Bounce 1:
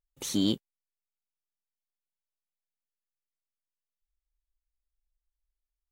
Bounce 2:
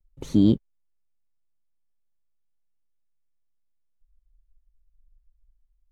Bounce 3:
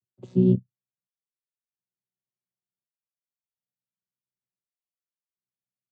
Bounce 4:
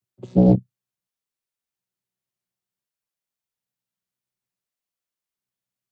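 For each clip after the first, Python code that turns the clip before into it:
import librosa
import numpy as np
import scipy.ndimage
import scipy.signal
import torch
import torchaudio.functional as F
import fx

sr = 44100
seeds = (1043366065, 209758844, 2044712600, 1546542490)

y1 = fx.tilt_eq(x, sr, slope=-4.5)
y1 = fx.vibrato(y1, sr, rate_hz=0.62, depth_cents=42.0)
y2 = fx.chord_vocoder(y1, sr, chord='bare fifth', root=47)
y2 = fx.chopper(y2, sr, hz=0.56, depth_pct=80, duty_pct=60)
y3 = fx.doppler_dist(y2, sr, depth_ms=0.97)
y3 = y3 * librosa.db_to_amplitude(5.5)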